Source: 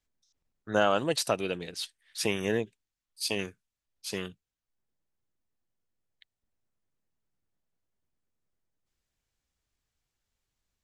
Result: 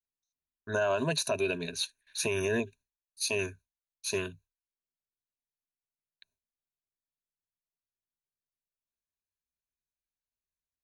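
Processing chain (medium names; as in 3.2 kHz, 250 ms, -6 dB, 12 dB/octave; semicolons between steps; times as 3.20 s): gate with hold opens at -57 dBFS; rippled EQ curve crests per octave 1.5, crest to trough 16 dB; peak limiter -19.5 dBFS, peak gain reduction 10.5 dB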